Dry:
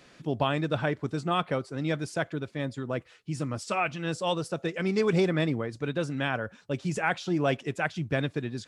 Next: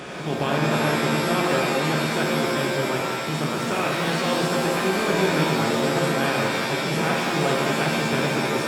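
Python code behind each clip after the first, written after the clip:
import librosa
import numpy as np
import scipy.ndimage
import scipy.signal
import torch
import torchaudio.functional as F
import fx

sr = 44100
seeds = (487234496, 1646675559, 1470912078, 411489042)

y = fx.bin_compress(x, sr, power=0.4)
y = fx.rev_shimmer(y, sr, seeds[0], rt60_s=2.1, semitones=7, shimmer_db=-2, drr_db=-1.0)
y = F.gain(torch.from_numpy(y), -5.5).numpy()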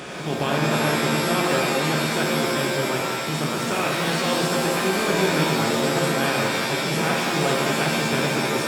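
y = fx.high_shelf(x, sr, hz=4200.0, db=5.0)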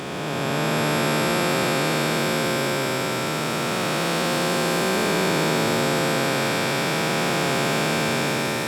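y = fx.spec_blur(x, sr, span_ms=716.0)
y = F.gain(torch.from_numpy(y), 1.5).numpy()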